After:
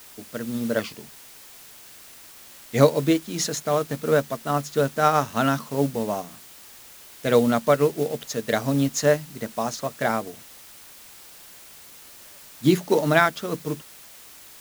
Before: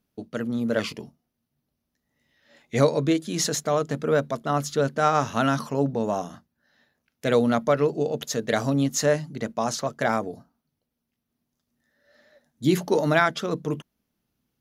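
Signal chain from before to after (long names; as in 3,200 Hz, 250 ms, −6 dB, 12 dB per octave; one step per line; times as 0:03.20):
background noise white −41 dBFS
expander for the loud parts 1.5 to 1, over −33 dBFS
level +4 dB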